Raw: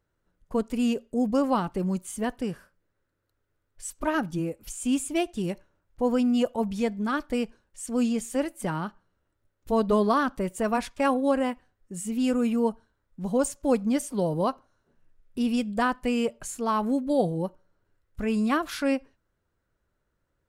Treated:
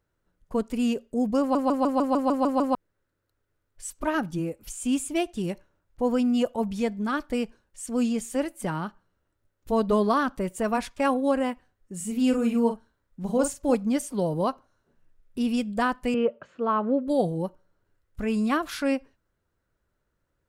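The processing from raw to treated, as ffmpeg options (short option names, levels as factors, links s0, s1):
-filter_complex "[0:a]asettb=1/sr,asplit=3[s0][s1][s2];[s0]atrim=end=11.964[s3];[s1]atrim=start=11.96:end=13.75,asetpts=PTS-STARTPTS,afade=t=in:d=0.004:c=qsin,afade=t=out:st=1.786:d=0.004:c=qsin,asplit=2[s4][s5];[s5]adelay=43,volume=0.447[s6];[s4][s6]amix=inputs=2:normalize=0,atrim=end_sample=78939[s7];[s2]atrim=start=13.746[s8];[s3][s7]acrossfade=d=0.004:c1=hsin:c2=qsin[s9];[s9][s8]acrossfade=d=0.004:c1=qsin:c2=hsin,asettb=1/sr,asplit=3[s10][s11][s12];[s10]atrim=end=16.144[s13];[s11]atrim=start=16.14:end=17.08,asetpts=PTS-STARTPTS,afade=t=in:d=0.004:c=qsin,afade=t=out:st=0.936:d=0.004:c=qsin,highpass=150,equalizer=f=530:t=q:w=4:g=9,equalizer=f=800:t=q:w=4:g=-4,equalizer=f=1300:t=q:w=4:g=5,equalizer=f=2200:t=q:w=4:g=-6,lowpass=f=2800:w=0.5412,lowpass=f=2800:w=1.3066[s14];[s12]atrim=start=17.076[s15];[s13][s14]acrossfade=d=0.004:c1=hsin:c2=qsin[s16];[s16][s15]acrossfade=d=0.004:c1=qsin:c2=hsin,asplit=10[s17][s18][s19][s20][s21][s22][s23][s24][s25][s26];[s17]atrim=end=1.552[s27];[s18]atrim=start=1.398:end=1.552[s28];[s19]atrim=start=1.398:end=1.552[s29];[s20]atrim=start=1.398:end=1.552[s30];[s21]atrim=start=1.398:end=1.552[s31];[s22]atrim=start=1.398:end=1.552[s32];[s23]atrim=start=1.398:end=1.552[s33];[s24]atrim=start=1.398:end=1.552[s34];[s25]atrim=start=1.398:end=1.552[s35];[s26]atrim=start=2.748[s36];[s27][s28]acrossfade=d=0.004:c1=hsin:c2=hsin[s37];[s37][s29]acrossfade=d=0.004:c1=hsin:c2=hsin[s38];[s38][s30]acrossfade=d=0.004:c1=hsin:c2=hsin[s39];[s39][s31]acrossfade=d=0.004:c1=hsin:c2=hsin[s40];[s40][s32]acrossfade=d=0.004:c1=hsin:c2=hsin[s41];[s41][s33]acrossfade=d=0.004:c1=hsin:c2=hsin[s42];[s42][s34]acrossfade=d=0.004:c1=hsin:c2=hsin[s43];[s43][s35]acrossfade=d=0.004:c1=hsin:c2=hsin[s44];[s44][s36]acrossfade=d=0.004:c1=hsin:c2=hsin"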